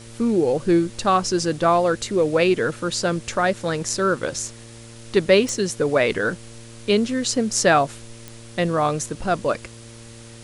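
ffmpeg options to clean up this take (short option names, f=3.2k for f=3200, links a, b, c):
-af "adeclick=t=4,bandreject=f=115.2:t=h:w=4,bandreject=f=230.4:t=h:w=4,bandreject=f=345.6:t=h:w=4,bandreject=f=460.8:t=h:w=4,bandreject=f=576:t=h:w=4,afftdn=nr=24:nf=-41"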